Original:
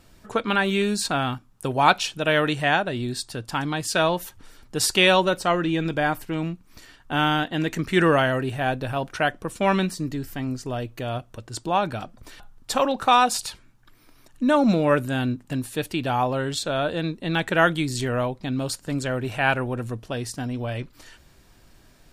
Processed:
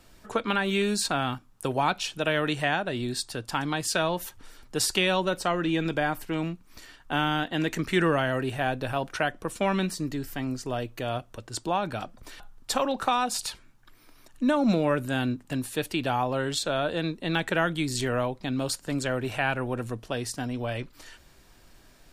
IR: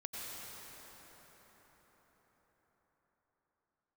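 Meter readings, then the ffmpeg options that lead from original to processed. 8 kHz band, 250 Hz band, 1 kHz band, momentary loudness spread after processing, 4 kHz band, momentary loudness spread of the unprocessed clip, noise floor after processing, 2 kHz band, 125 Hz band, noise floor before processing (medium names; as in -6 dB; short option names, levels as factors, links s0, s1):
-2.0 dB, -3.5 dB, -5.5 dB, 9 LU, -4.0 dB, 12 LU, -56 dBFS, -5.0 dB, -4.5 dB, -55 dBFS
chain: -filter_complex "[0:a]equalizer=f=110:w=0.49:g=-4.5,acrossover=split=280[s0][s1];[s1]acompressor=threshold=0.0631:ratio=3[s2];[s0][s2]amix=inputs=2:normalize=0"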